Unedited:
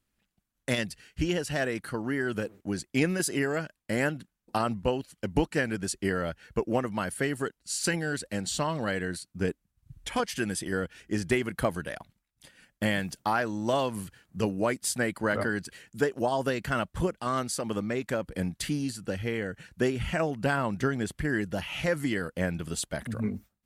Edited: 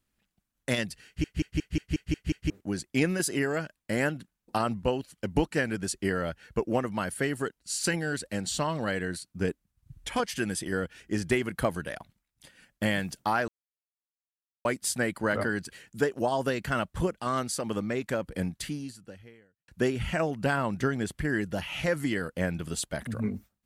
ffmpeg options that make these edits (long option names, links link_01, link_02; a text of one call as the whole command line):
ffmpeg -i in.wav -filter_complex "[0:a]asplit=12[link_01][link_02][link_03][link_04][link_05][link_06][link_07][link_08][link_09][link_10][link_11][link_12];[link_01]atrim=end=1.242[link_13];[link_02]atrim=start=1.058:end=1.242[link_14];[link_03]atrim=start=1.058:end=1.242[link_15];[link_04]atrim=start=1.058:end=1.242[link_16];[link_05]atrim=start=1.058:end=1.242[link_17];[link_06]atrim=start=1.058:end=1.242[link_18];[link_07]atrim=start=1.058:end=1.242[link_19];[link_08]atrim=start=1.058:end=1.242[link_20];[link_09]atrim=start=2.498:end=13.48,asetpts=PTS-STARTPTS,afade=type=out:start_time=10.978:duration=0.004:curve=hsin[link_21];[link_10]atrim=start=13.48:end=14.65,asetpts=PTS-STARTPTS,volume=0[link_22];[link_11]atrim=start=14.65:end=19.68,asetpts=PTS-STARTPTS,afade=type=in:duration=0.004:curve=hsin,afade=type=out:start_time=3.78:duration=1.25:curve=qua[link_23];[link_12]atrim=start=19.68,asetpts=PTS-STARTPTS,afade=type=in:duration=0.004:curve=hsin[link_24];[link_13][link_14]acrossfade=duration=0.004:curve1=hsin:curve2=hsin[link_25];[link_25][link_15]acrossfade=duration=0.004:curve1=hsin:curve2=hsin[link_26];[link_26][link_16]acrossfade=duration=0.004:curve1=hsin:curve2=hsin[link_27];[link_27][link_17]acrossfade=duration=0.004:curve1=hsin:curve2=hsin[link_28];[link_28][link_18]acrossfade=duration=0.004:curve1=hsin:curve2=hsin[link_29];[link_29][link_19]acrossfade=duration=0.004:curve1=hsin:curve2=hsin[link_30];[link_30][link_20]acrossfade=duration=0.004:curve1=hsin:curve2=hsin[link_31];[link_21][link_22][link_23][link_24]concat=n=4:v=0:a=1[link_32];[link_31][link_32]acrossfade=duration=0.004:curve1=hsin:curve2=hsin" out.wav